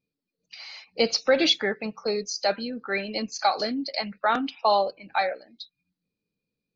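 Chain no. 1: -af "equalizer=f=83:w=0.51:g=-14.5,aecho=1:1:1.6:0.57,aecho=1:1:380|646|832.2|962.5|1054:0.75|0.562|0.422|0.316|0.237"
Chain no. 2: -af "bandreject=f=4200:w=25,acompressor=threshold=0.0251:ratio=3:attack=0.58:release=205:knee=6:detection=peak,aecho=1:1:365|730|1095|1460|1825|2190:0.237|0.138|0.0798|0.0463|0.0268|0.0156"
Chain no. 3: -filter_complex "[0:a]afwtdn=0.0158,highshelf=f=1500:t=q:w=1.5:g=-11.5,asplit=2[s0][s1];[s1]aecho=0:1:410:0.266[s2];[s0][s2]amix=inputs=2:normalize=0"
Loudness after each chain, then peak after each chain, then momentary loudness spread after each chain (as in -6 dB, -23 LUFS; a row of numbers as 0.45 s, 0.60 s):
-22.5 LUFS, -36.5 LUFS, -26.0 LUFS; -7.5 dBFS, -22.0 dBFS, -7.5 dBFS; 11 LU, 12 LU, 11 LU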